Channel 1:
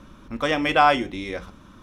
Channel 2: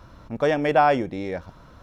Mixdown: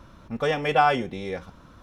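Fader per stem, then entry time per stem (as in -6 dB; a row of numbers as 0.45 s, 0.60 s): -6.0 dB, -4.0 dB; 0.00 s, 0.00 s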